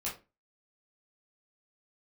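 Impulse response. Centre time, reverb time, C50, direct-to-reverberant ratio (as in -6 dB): 27 ms, 0.30 s, 8.5 dB, -6.5 dB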